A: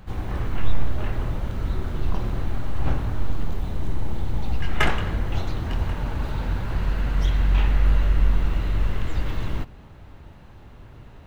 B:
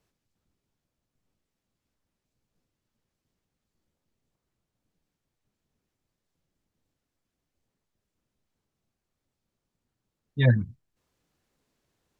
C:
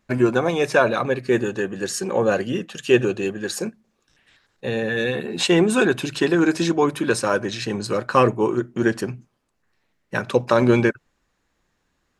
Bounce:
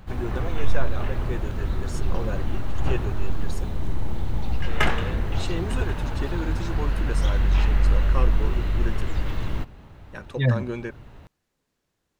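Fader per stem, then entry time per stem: -0.5 dB, -1.0 dB, -15.0 dB; 0.00 s, 0.00 s, 0.00 s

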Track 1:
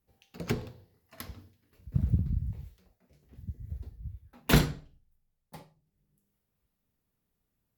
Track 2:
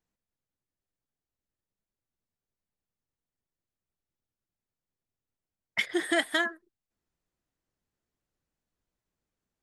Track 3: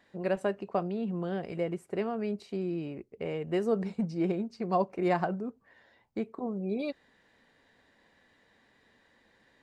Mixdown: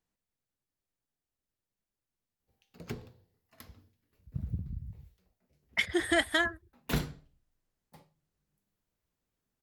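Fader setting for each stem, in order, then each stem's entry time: -9.0 dB, -0.5 dB, mute; 2.40 s, 0.00 s, mute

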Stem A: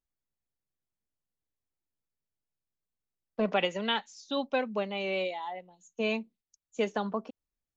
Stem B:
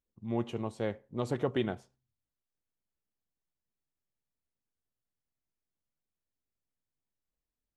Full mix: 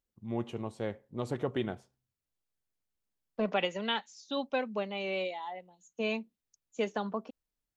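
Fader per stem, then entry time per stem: -2.5 dB, -2.0 dB; 0.00 s, 0.00 s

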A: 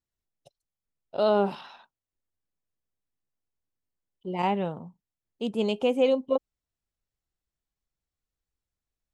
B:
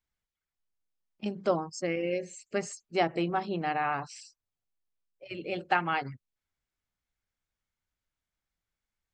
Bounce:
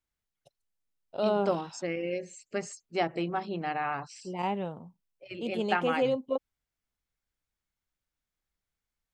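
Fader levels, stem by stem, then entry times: -5.0 dB, -2.0 dB; 0.00 s, 0.00 s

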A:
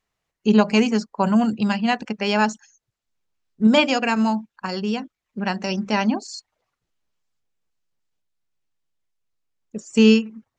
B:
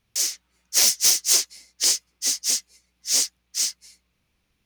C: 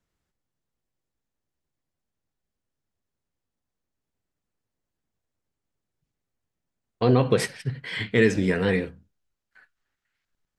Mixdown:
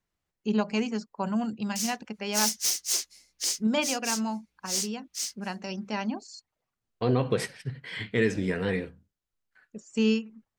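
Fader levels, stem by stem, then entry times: -10.5 dB, -9.0 dB, -5.5 dB; 0.00 s, 1.60 s, 0.00 s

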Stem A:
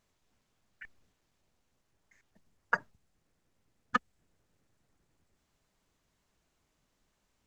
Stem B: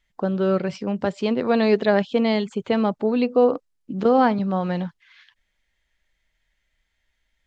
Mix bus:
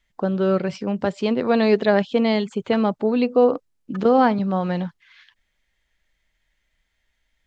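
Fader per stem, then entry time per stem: -12.0 dB, +1.0 dB; 0.00 s, 0.00 s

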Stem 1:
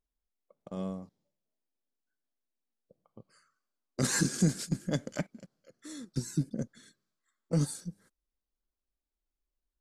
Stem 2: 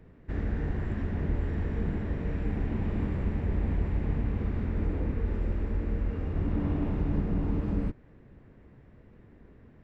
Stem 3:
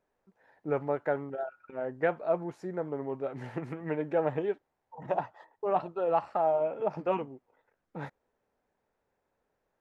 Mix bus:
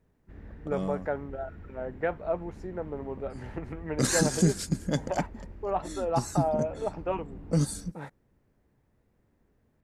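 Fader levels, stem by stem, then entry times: +3.0 dB, -15.5 dB, -1.5 dB; 0.00 s, 0.00 s, 0.00 s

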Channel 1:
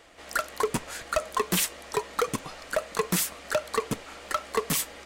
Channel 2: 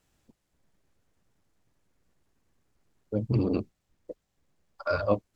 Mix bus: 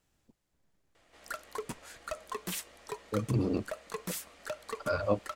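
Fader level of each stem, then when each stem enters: -12.0 dB, -3.5 dB; 0.95 s, 0.00 s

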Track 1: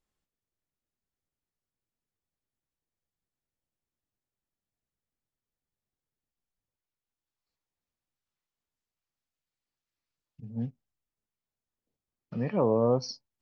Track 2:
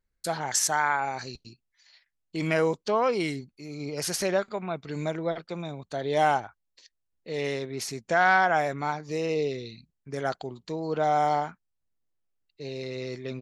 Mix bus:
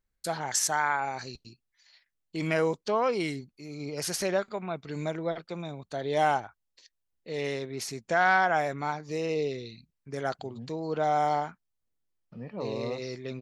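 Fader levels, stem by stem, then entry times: -10.0 dB, -2.0 dB; 0.00 s, 0.00 s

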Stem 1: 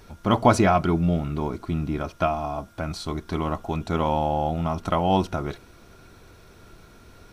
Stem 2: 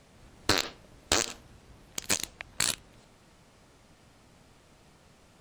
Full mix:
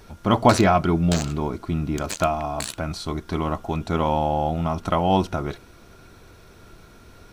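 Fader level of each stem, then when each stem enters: +1.5 dB, -4.0 dB; 0.00 s, 0.00 s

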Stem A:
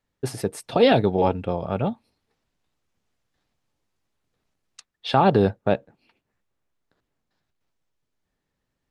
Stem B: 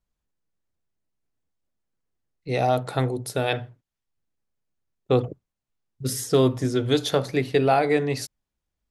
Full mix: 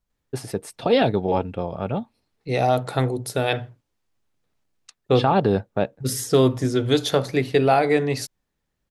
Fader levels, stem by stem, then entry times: -1.5 dB, +2.0 dB; 0.10 s, 0.00 s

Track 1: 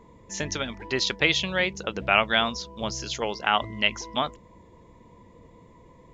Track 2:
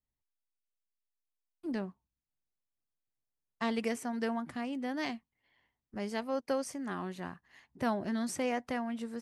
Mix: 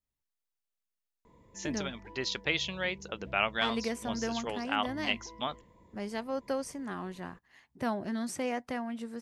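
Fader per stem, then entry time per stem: -8.5 dB, -0.5 dB; 1.25 s, 0.00 s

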